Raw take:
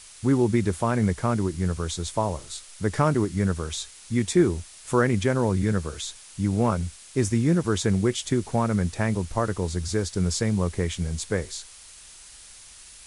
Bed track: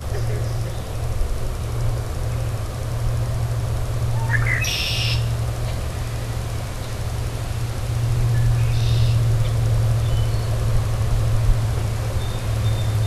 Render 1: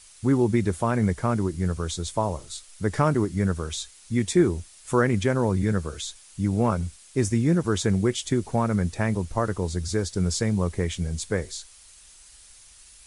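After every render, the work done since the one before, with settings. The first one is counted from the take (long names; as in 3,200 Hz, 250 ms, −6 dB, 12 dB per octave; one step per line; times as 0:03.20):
broadband denoise 6 dB, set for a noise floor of −47 dBFS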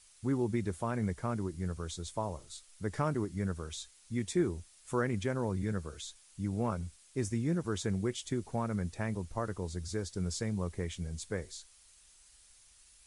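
level −10.5 dB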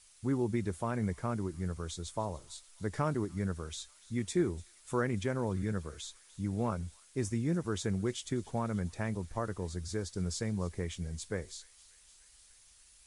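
delay with a high-pass on its return 294 ms, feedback 72%, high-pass 2,100 Hz, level −19.5 dB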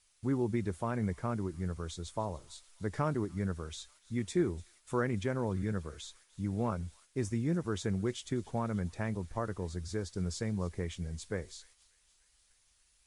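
noise gate −58 dBFS, range −6 dB
high-shelf EQ 6,000 Hz −6 dB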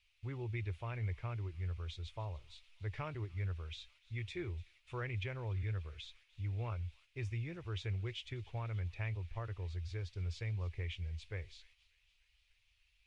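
drawn EQ curve 110 Hz 0 dB, 210 Hz −25 dB, 350 Hz −13 dB, 1,600 Hz −9 dB, 2,500 Hz +7 dB, 8,300 Hz −23 dB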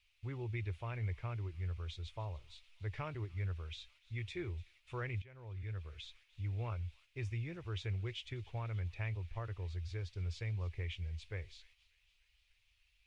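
0:05.22–0:06.05: fade in, from −21 dB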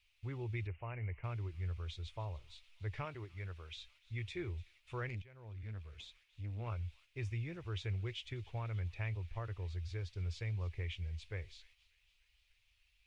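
0:00.67–0:01.24: Chebyshev low-pass with heavy ripple 2,900 Hz, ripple 3 dB
0:03.05–0:03.77: low-shelf EQ 210 Hz −8.5 dB
0:05.09–0:06.67: tube saturation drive 37 dB, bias 0.5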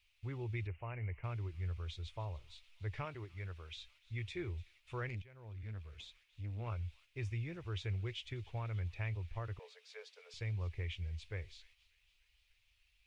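0:09.59–0:10.34: Chebyshev high-pass filter 430 Hz, order 10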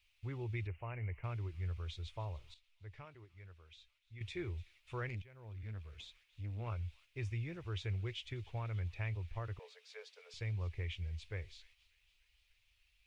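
0:02.54–0:04.21: clip gain −10.5 dB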